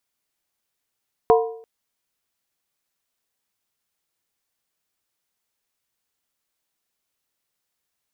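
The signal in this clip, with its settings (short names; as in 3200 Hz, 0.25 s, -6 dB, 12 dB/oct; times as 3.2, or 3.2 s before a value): skin hit length 0.34 s, lowest mode 452 Hz, modes 4, decay 0.59 s, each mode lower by 4 dB, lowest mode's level -10 dB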